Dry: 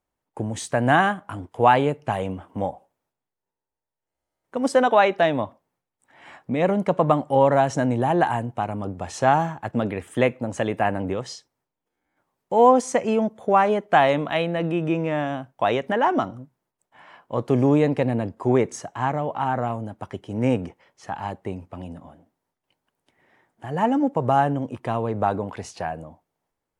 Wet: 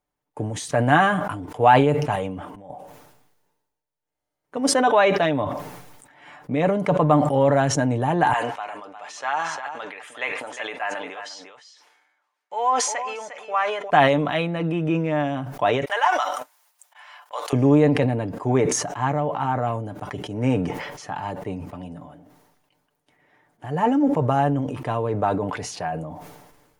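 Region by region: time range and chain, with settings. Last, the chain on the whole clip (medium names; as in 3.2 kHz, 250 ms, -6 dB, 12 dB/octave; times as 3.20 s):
2.15–2.70 s: compression 3:1, threshold -35 dBFS + slow attack 226 ms
8.33–13.90 s: high-pass 1.1 kHz + distance through air 63 m + delay 354 ms -10.5 dB
15.85–17.53 s: high-pass 710 Hz 24 dB/octave + gate -57 dBFS, range -25 dB + treble shelf 2.6 kHz +11.5 dB
whole clip: band-stop 7.9 kHz, Q 18; comb 6.8 ms, depth 48%; decay stretcher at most 44 dB/s; trim -1 dB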